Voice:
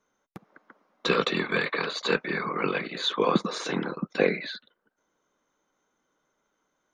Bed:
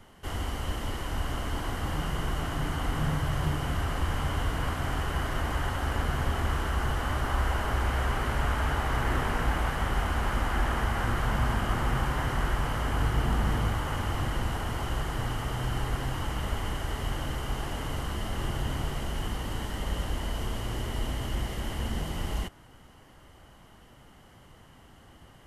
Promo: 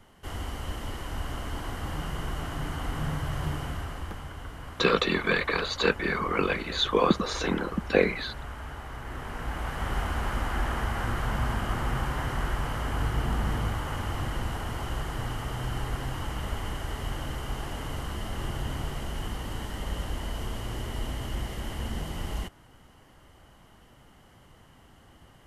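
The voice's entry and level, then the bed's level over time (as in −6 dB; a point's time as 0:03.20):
3.75 s, +1.0 dB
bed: 0:03.58 −2.5 dB
0:04.33 −11.5 dB
0:09.03 −11.5 dB
0:09.92 −1.5 dB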